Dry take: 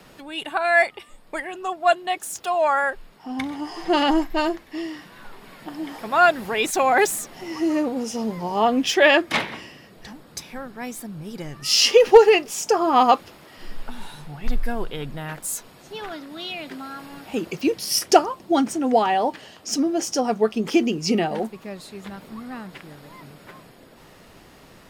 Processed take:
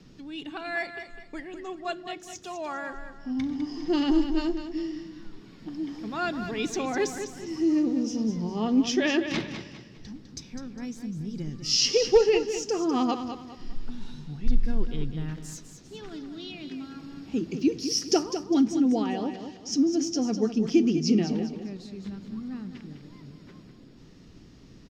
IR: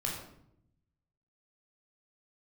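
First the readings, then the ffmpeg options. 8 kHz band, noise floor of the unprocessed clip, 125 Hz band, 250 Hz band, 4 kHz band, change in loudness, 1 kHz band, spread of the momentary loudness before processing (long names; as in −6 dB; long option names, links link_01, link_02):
−6.0 dB, −49 dBFS, +1.5 dB, 0.0 dB, −6.5 dB, −6.5 dB, −15.0 dB, 20 LU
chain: -filter_complex "[0:a]firequalizer=gain_entry='entry(290,0);entry(590,-17);entry(5800,-4);entry(9300,-25)':delay=0.05:min_phase=1,aecho=1:1:203|406|609|812:0.355|0.121|0.041|0.0139,asplit=2[link_01][link_02];[1:a]atrim=start_sample=2205[link_03];[link_02][link_03]afir=irnorm=-1:irlink=0,volume=-19.5dB[link_04];[link_01][link_04]amix=inputs=2:normalize=0"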